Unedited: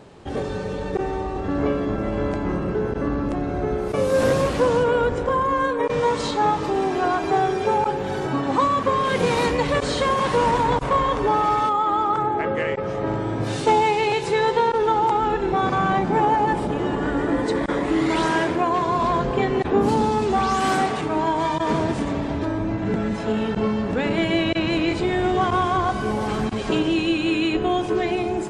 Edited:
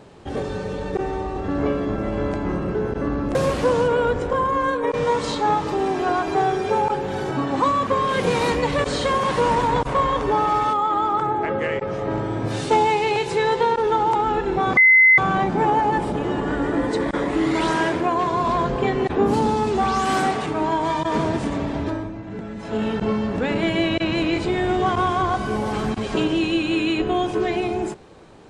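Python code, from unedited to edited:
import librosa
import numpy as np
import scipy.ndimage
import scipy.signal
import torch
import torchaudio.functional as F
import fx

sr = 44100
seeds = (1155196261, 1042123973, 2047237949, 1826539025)

y = fx.edit(x, sr, fx.cut(start_s=3.35, length_s=0.96),
    fx.insert_tone(at_s=15.73, length_s=0.41, hz=2050.0, db=-9.0),
    fx.fade_down_up(start_s=22.43, length_s=0.94, db=-9.0, fade_s=0.25), tone=tone)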